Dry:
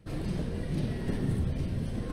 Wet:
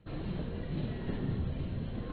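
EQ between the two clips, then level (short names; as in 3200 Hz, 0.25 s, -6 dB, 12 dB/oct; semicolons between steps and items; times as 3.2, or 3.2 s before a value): rippled Chebyshev low-pass 4200 Hz, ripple 3 dB; -1.5 dB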